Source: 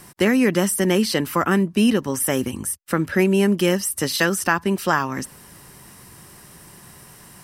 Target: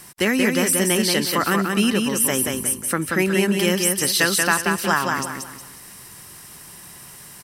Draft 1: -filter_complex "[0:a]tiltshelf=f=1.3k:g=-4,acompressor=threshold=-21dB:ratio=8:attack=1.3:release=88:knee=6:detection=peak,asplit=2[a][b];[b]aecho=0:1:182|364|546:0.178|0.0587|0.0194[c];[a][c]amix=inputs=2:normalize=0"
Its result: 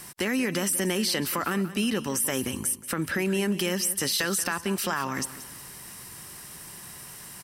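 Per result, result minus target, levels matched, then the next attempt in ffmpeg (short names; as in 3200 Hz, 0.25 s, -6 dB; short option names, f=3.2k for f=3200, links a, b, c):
compressor: peak gain reduction +11.5 dB; echo-to-direct -11 dB
-filter_complex "[0:a]tiltshelf=f=1.3k:g=-4,asplit=2[a][b];[b]aecho=0:1:182|364|546:0.178|0.0587|0.0194[c];[a][c]amix=inputs=2:normalize=0"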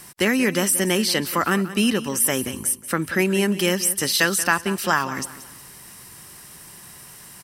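echo-to-direct -11 dB
-filter_complex "[0:a]tiltshelf=f=1.3k:g=-4,asplit=2[a][b];[b]aecho=0:1:182|364|546|728:0.631|0.208|0.0687|0.0227[c];[a][c]amix=inputs=2:normalize=0"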